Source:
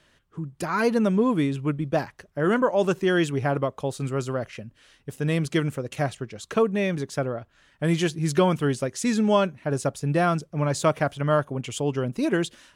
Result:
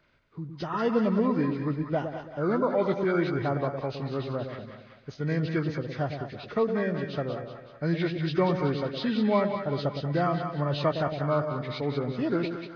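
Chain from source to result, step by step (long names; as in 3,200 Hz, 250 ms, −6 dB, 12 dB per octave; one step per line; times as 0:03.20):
hearing-aid frequency compression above 1,100 Hz 1.5 to 1
echo with a time of its own for lows and highs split 720 Hz, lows 111 ms, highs 188 ms, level −6.5 dB
level −4.5 dB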